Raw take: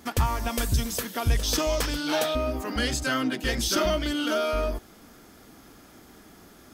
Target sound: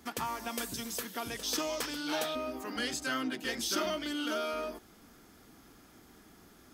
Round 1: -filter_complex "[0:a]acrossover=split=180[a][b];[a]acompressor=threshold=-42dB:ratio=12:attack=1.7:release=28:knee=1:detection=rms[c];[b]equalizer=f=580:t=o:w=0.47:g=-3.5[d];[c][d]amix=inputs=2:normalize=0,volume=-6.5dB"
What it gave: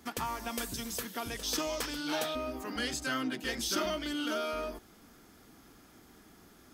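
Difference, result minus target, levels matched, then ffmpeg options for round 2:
compressor: peak gain reduction -9.5 dB
-filter_complex "[0:a]acrossover=split=180[a][b];[a]acompressor=threshold=-52.5dB:ratio=12:attack=1.7:release=28:knee=1:detection=rms[c];[b]equalizer=f=580:t=o:w=0.47:g=-3.5[d];[c][d]amix=inputs=2:normalize=0,volume=-6.5dB"

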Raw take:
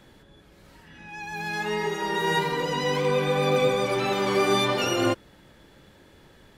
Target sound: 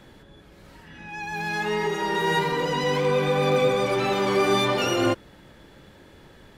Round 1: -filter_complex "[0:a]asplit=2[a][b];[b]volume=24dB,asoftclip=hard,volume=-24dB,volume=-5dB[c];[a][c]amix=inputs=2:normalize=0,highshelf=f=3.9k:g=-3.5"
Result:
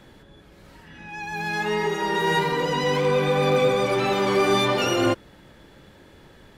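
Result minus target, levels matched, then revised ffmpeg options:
overloaded stage: distortion -4 dB
-filter_complex "[0:a]asplit=2[a][b];[b]volume=30.5dB,asoftclip=hard,volume=-30.5dB,volume=-5dB[c];[a][c]amix=inputs=2:normalize=0,highshelf=f=3.9k:g=-3.5"

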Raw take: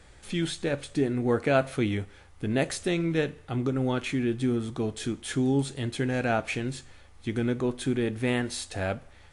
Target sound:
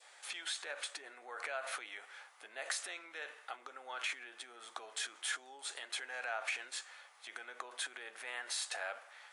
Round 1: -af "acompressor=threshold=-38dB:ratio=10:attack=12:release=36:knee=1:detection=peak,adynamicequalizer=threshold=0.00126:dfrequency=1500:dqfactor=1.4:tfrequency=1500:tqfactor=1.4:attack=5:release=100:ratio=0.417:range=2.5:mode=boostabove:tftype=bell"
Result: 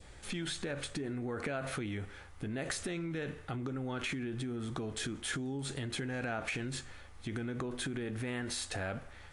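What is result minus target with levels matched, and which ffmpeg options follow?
500 Hz band +5.5 dB
-af "acompressor=threshold=-38dB:ratio=10:attack=12:release=36:knee=1:detection=peak,highpass=f=670:w=0.5412,highpass=f=670:w=1.3066,adynamicequalizer=threshold=0.00126:dfrequency=1500:dqfactor=1.4:tfrequency=1500:tqfactor=1.4:attack=5:release=100:ratio=0.417:range=2.5:mode=boostabove:tftype=bell"

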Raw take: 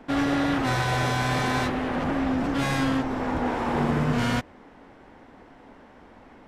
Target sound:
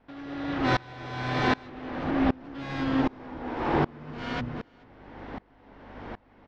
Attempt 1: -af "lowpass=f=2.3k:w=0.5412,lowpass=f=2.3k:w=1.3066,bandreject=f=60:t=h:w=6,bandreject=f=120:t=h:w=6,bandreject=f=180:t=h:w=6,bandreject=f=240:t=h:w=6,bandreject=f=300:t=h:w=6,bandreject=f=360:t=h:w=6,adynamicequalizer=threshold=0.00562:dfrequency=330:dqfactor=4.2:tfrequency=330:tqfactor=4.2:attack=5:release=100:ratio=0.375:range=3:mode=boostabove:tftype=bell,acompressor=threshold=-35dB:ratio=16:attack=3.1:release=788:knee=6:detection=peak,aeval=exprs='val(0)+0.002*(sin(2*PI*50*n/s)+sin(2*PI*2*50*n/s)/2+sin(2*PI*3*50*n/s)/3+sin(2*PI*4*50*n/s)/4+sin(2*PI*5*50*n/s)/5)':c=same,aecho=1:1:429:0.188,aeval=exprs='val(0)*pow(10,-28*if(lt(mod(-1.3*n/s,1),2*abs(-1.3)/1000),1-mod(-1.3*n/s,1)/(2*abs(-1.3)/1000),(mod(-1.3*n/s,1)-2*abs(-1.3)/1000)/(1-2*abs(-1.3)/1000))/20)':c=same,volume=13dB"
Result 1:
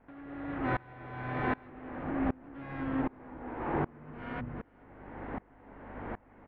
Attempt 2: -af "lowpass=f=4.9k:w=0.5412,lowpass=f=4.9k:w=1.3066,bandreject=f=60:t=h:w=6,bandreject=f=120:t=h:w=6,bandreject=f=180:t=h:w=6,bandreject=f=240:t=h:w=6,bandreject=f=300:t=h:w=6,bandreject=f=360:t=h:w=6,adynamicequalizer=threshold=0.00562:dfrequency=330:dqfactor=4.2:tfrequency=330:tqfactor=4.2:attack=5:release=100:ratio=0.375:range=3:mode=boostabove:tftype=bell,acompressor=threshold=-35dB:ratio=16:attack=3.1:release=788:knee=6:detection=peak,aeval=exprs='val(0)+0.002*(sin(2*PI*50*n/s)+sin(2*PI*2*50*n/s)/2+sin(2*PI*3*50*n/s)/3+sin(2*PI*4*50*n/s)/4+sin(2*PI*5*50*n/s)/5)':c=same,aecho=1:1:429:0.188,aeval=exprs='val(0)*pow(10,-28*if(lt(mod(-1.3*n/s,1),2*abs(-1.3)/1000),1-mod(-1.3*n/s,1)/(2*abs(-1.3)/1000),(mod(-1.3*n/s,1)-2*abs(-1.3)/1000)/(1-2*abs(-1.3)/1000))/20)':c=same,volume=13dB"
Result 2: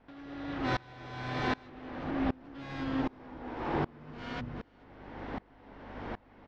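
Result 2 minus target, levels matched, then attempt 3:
compressor: peak gain reduction +7 dB
-af "lowpass=f=4.9k:w=0.5412,lowpass=f=4.9k:w=1.3066,bandreject=f=60:t=h:w=6,bandreject=f=120:t=h:w=6,bandreject=f=180:t=h:w=6,bandreject=f=240:t=h:w=6,bandreject=f=300:t=h:w=6,bandreject=f=360:t=h:w=6,adynamicequalizer=threshold=0.00562:dfrequency=330:dqfactor=4.2:tfrequency=330:tqfactor=4.2:attack=5:release=100:ratio=0.375:range=3:mode=boostabove:tftype=bell,acompressor=threshold=-27.5dB:ratio=16:attack=3.1:release=788:knee=6:detection=peak,aeval=exprs='val(0)+0.002*(sin(2*PI*50*n/s)+sin(2*PI*2*50*n/s)/2+sin(2*PI*3*50*n/s)/3+sin(2*PI*4*50*n/s)/4+sin(2*PI*5*50*n/s)/5)':c=same,aecho=1:1:429:0.188,aeval=exprs='val(0)*pow(10,-28*if(lt(mod(-1.3*n/s,1),2*abs(-1.3)/1000),1-mod(-1.3*n/s,1)/(2*abs(-1.3)/1000),(mod(-1.3*n/s,1)-2*abs(-1.3)/1000)/(1-2*abs(-1.3)/1000))/20)':c=same,volume=13dB"

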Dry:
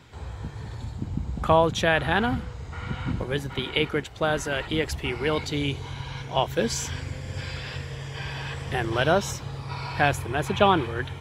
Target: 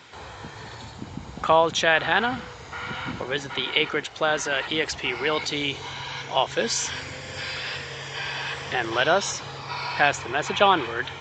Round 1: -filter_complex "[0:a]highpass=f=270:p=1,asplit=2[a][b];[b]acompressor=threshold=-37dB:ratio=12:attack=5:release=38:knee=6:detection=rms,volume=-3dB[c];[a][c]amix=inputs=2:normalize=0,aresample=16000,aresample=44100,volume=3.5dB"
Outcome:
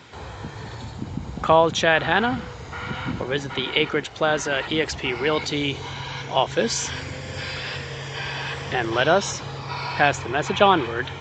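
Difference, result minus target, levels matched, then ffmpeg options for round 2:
250 Hz band +4.0 dB
-filter_complex "[0:a]highpass=f=720:p=1,asplit=2[a][b];[b]acompressor=threshold=-37dB:ratio=12:attack=5:release=38:knee=6:detection=rms,volume=-3dB[c];[a][c]amix=inputs=2:normalize=0,aresample=16000,aresample=44100,volume=3.5dB"

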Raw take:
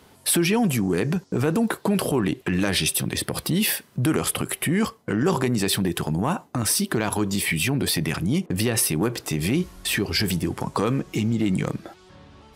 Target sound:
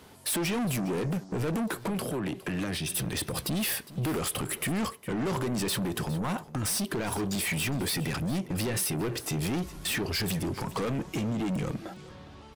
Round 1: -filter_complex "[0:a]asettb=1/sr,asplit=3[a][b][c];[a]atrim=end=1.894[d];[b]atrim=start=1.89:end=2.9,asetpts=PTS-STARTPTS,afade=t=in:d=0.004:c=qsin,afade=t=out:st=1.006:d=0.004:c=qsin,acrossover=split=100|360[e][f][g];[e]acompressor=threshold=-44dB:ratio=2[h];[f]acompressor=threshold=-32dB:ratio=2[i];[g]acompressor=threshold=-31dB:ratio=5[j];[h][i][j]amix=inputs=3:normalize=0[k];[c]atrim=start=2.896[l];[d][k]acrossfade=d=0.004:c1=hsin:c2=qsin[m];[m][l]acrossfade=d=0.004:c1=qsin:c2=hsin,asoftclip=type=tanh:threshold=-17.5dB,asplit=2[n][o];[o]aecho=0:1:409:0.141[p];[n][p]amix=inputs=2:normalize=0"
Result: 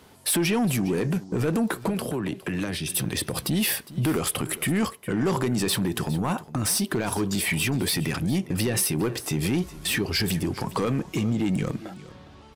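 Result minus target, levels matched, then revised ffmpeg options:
soft clip: distortion -8 dB
-filter_complex "[0:a]asettb=1/sr,asplit=3[a][b][c];[a]atrim=end=1.894[d];[b]atrim=start=1.89:end=2.9,asetpts=PTS-STARTPTS,afade=t=in:d=0.004:c=qsin,afade=t=out:st=1.006:d=0.004:c=qsin,acrossover=split=100|360[e][f][g];[e]acompressor=threshold=-44dB:ratio=2[h];[f]acompressor=threshold=-32dB:ratio=2[i];[g]acompressor=threshold=-31dB:ratio=5[j];[h][i][j]amix=inputs=3:normalize=0[k];[c]atrim=start=2.896[l];[d][k]acrossfade=d=0.004:c1=hsin:c2=qsin[m];[m][l]acrossfade=d=0.004:c1=qsin:c2=hsin,asoftclip=type=tanh:threshold=-27dB,asplit=2[n][o];[o]aecho=0:1:409:0.141[p];[n][p]amix=inputs=2:normalize=0"

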